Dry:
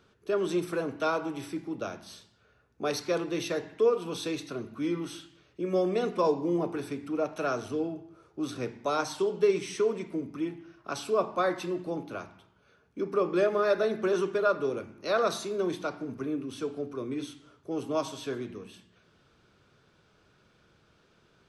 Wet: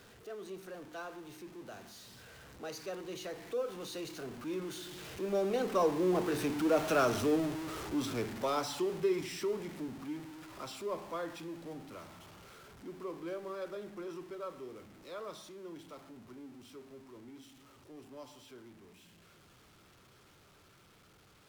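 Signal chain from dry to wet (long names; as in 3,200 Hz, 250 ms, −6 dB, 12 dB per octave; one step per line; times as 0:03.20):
converter with a step at zero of −33.5 dBFS
source passing by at 0:06.96, 25 m/s, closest 22 metres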